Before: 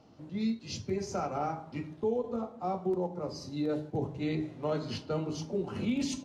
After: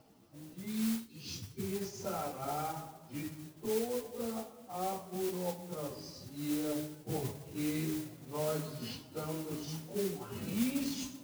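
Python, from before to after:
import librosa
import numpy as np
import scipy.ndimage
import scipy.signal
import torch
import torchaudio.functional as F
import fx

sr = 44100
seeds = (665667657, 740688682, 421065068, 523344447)

y = fx.spec_erase(x, sr, start_s=0.38, length_s=0.58, low_hz=550.0, high_hz=2100.0)
y = fx.stretch_vocoder_free(y, sr, factor=1.8)
y = fx.mod_noise(y, sr, seeds[0], snr_db=11)
y = F.gain(torch.from_numpy(y), -2.5).numpy()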